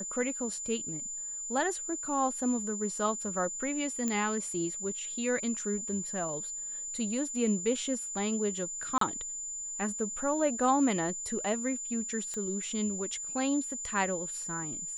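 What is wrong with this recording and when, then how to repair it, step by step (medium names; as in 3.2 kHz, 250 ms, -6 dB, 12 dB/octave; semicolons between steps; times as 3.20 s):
whine 7.1 kHz -36 dBFS
4.08 s: pop -18 dBFS
8.98–9.01 s: dropout 33 ms
12.34 s: pop -25 dBFS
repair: de-click; band-stop 7.1 kHz, Q 30; interpolate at 8.98 s, 33 ms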